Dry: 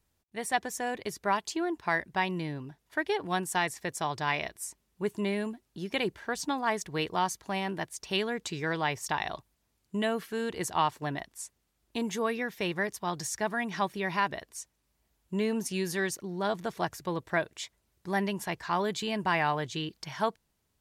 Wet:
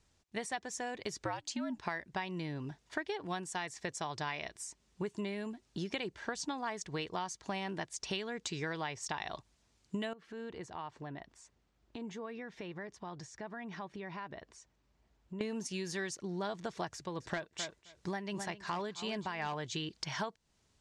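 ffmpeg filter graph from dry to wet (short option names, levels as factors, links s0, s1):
-filter_complex "[0:a]asettb=1/sr,asplit=3[s0][s1][s2];[s0]atrim=end=1.234[s3];[s1]atrim=start=1.23:end=1.79,asetpts=PTS-STARTPTS,afade=t=in:d=0.004:c=qsin,afade=t=out:st=0.556:d=0.004:c=qsin,bandreject=f=93.81:t=h:w=4,bandreject=f=187.62:t=h:w=4,bandreject=f=281.43:t=h:w=4,bandreject=f=375.24:t=h:w=4,afreqshift=-82[s4];[s2]atrim=start=1.786[s5];[s3][s4]acrossfade=d=0.004:c1=hsin:c2=qsin[s6];[s6][s5]acrossfade=d=0.004:c1=qsin:c2=hsin,asettb=1/sr,asplit=3[s7][s8][s9];[s7]atrim=end=10.134[s10];[s8]atrim=start=10.13:end=15.41,asetpts=PTS-STARTPTS,afade=t=in:d=0.004:c=qsin,afade=t=out:st=5.276:d=0.004:c=qsin,acompressor=threshold=0.00398:ratio=3:attack=3.2:release=140:knee=1:detection=peak,lowpass=f=1600:p=1[s11];[s9]atrim=start=15.406[s12];[s10][s11]acrossfade=d=0.004:c1=hsin:c2=qsin[s13];[s13][s12]acrossfade=d=0.004:c1=qsin:c2=hsin,asettb=1/sr,asplit=3[s14][s15][s16];[s14]atrim=end=16.944[s17];[s15]atrim=start=16.94:end=19.54,asetpts=PTS-STARTPTS,afade=t=in:d=0.004:c=qsin,afade=t=out:st=2.596:d=0.004:c=qsin,asplit=2[s18][s19];[s19]adelay=262,lowpass=f=4100:p=1,volume=0.224,asplit=2[s20][s21];[s21]adelay=262,lowpass=f=4100:p=1,volume=0.15[s22];[s18][s20][s22]amix=inputs=3:normalize=0,atrim=end_sample=114660,tremolo=f=2.7:d=0.7,volume=14.1,asoftclip=hard,volume=0.0708[s23];[s16]atrim=start=19.536[s24];[s17][s23]acrossfade=d=0.004:c1=hsin:c2=qsin[s25];[s25][s24]acrossfade=d=0.004:c1=qsin:c2=hsin,highshelf=f=5200:g=7,acompressor=threshold=0.0126:ratio=10,lowpass=f=7400:w=0.5412,lowpass=f=7400:w=1.3066,volume=1.5"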